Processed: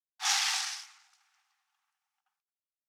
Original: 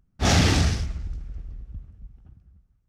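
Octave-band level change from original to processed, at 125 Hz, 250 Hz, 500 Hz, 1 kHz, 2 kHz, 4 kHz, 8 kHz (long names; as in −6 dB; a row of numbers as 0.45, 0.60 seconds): below −40 dB, below −40 dB, below −30 dB, −8.0 dB, −5.5 dB, −3.0 dB, −1.0 dB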